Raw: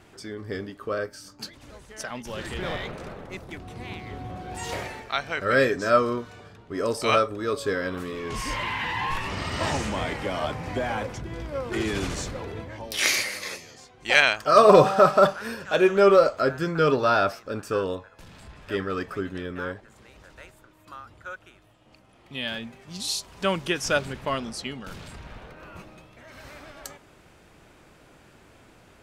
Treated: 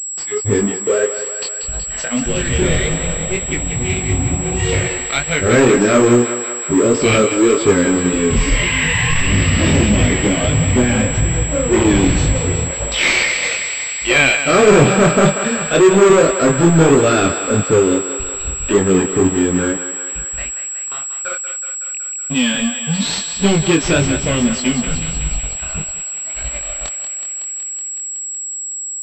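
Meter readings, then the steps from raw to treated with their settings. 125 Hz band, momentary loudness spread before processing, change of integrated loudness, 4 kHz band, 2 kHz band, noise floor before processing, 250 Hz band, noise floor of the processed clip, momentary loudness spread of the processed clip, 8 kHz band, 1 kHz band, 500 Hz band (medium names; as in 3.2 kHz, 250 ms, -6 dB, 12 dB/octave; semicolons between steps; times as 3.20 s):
+17.0 dB, 22 LU, +9.0 dB, +9.5 dB, +9.5 dB, -55 dBFS, +16.0 dB, -26 dBFS, 11 LU, +21.5 dB, +3.5 dB, +8.5 dB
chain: spectral noise reduction 29 dB; FFT filter 370 Hz 0 dB, 900 Hz -23 dB, 2.3 kHz -5 dB; in parallel at -1 dB: upward compressor, threshold -31 dBFS; on the sum: waveshaping leveller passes 5; chorus 1.7 Hz, delay 19 ms, depth 6.2 ms; on a send: thinning echo 186 ms, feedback 77%, high-pass 490 Hz, level -8.5 dB; on the sum: class-D stage that switches slowly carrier 7.7 kHz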